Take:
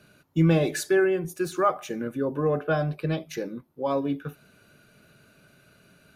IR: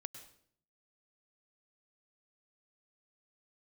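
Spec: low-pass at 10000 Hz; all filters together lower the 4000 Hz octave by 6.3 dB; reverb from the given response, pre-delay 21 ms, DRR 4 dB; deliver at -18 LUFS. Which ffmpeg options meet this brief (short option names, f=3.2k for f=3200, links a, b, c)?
-filter_complex "[0:a]lowpass=10k,equalizer=f=4k:t=o:g=-8,asplit=2[a][b];[1:a]atrim=start_sample=2205,adelay=21[c];[b][c]afir=irnorm=-1:irlink=0,volume=0dB[d];[a][d]amix=inputs=2:normalize=0,volume=6.5dB"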